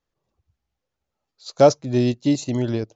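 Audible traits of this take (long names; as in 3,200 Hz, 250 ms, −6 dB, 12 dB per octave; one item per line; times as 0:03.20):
background noise floor −83 dBFS
spectral slope −7.0 dB per octave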